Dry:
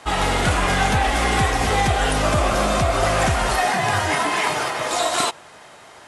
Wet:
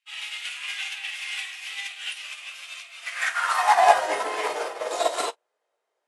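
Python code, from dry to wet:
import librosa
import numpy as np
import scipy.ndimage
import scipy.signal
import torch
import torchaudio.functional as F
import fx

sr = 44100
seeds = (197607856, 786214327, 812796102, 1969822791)

p1 = fx.filter_sweep_highpass(x, sr, from_hz=2600.0, to_hz=470.0, start_s=2.97, end_s=4.15, q=3.6)
p2 = p1 + fx.room_early_taps(p1, sr, ms=(19, 49), db=(-7.0, -10.0), dry=0)
y = fx.upward_expand(p2, sr, threshold_db=-36.0, expansion=2.5)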